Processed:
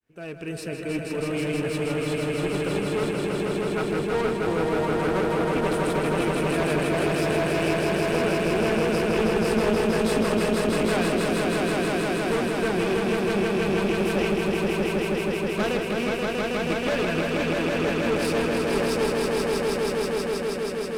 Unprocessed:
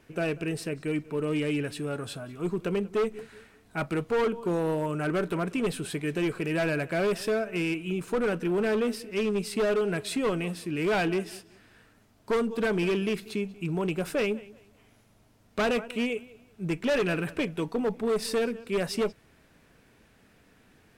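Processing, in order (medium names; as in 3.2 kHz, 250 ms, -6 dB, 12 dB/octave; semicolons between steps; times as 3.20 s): fade-in on the opening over 0.62 s; echo with a slow build-up 160 ms, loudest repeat 5, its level -3 dB; one-sided clip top -24.5 dBFS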